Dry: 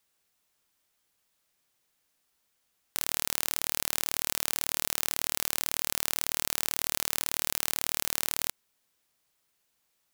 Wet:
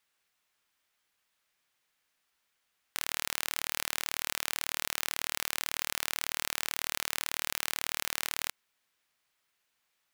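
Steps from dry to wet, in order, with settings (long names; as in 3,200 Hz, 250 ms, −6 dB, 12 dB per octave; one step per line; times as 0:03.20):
parametric band 1,900 Hz +9 dB 2.6 octaves
level −6.5 dB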